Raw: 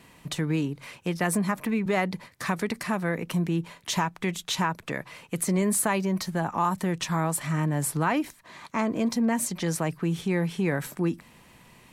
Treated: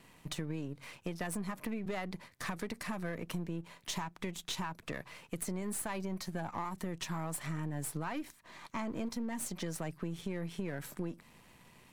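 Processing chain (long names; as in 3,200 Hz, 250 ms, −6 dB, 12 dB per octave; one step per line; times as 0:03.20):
gain on one half-wave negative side −7 dB
downward compressor, threshold −30 dBFS, peak gain reduction 9 dB
level −4 dB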